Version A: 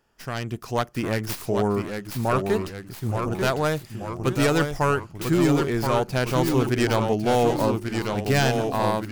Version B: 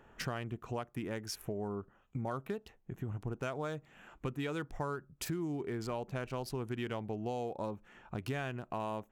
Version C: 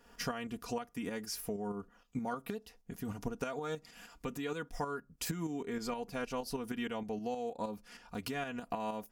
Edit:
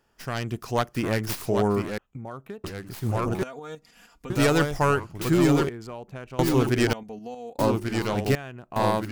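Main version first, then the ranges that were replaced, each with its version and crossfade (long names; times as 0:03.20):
A
0:01.98–0:02.64: punch in from B
0:03.43–0:04.30: punch in from C
0:05.69–0:06.39: punch in from B
0:06.93–0:07.59: punch in from C
0:08.35–0:08.76: punch in from B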